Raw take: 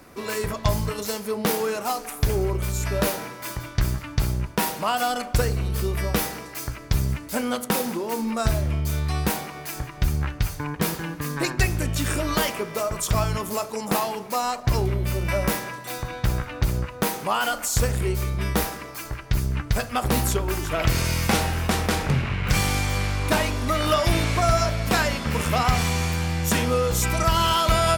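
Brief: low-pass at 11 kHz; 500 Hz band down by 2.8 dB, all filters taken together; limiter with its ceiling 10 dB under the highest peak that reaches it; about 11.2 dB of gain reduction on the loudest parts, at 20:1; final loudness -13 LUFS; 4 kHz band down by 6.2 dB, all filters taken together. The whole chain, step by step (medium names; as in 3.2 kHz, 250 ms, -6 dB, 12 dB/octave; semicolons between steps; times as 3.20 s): low-pass 11 kHz; peaking EQ 500 Hz -3.5 dB; peaking EQ 4 kHz -8.5 dB; compression 20:1, threshold -27 dBFS; trim +21 dB; peak limiter -2.5 dBFS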